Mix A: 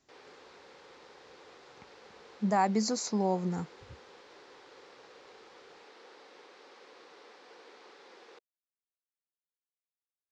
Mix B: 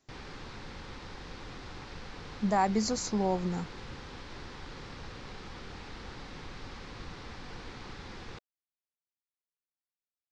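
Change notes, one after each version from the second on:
background: remove four-pole ladder high-pass 370 Hz, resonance 45%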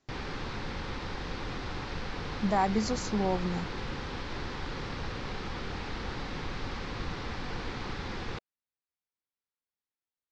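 background +8.0 dB
master: add high-frequency loss of the air 65 metres

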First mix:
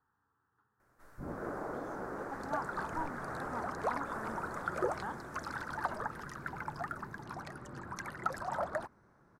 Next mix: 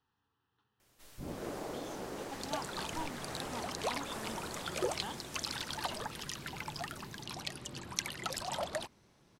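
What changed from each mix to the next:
master: add high shelf with overshoot 2,100 Hz +12.5 dB, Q 3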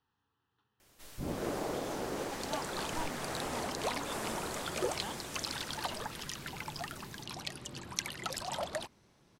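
first sound +5.0 dB

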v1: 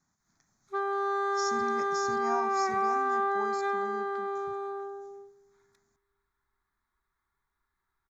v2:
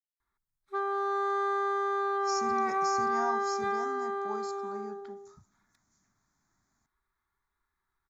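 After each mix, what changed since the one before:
speech: entry +0.90 s
reverb: off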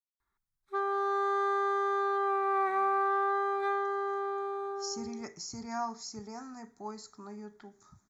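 speech: entry +2.55 s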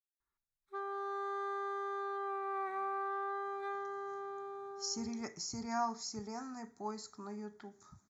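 background −9.5 dB

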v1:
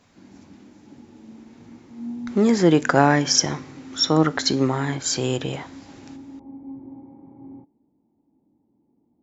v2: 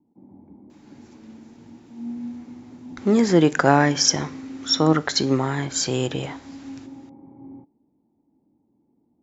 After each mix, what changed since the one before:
speech: entry +0.70 s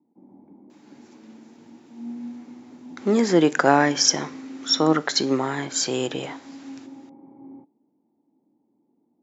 master: add high-pass filter 220 Hz 12 dB per octave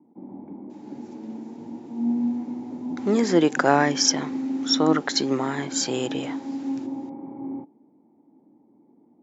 background +10.5 dB
reverb: off

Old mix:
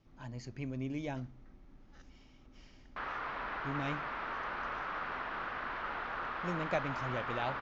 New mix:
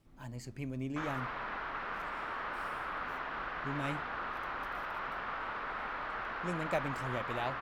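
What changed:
background: entry −2.00 s
master: remove Butterworth low-pass 6,800 Hz 96 dB per octave

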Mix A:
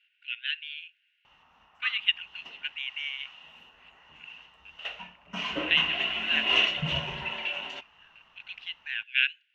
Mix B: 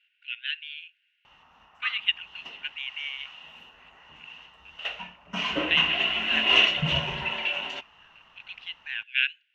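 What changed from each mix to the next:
background +4.0 dB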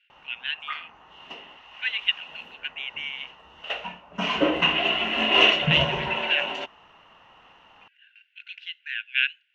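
background: entry −1.15 s
master: add parametric band 460 Hz +9 dB 2.7 octaves

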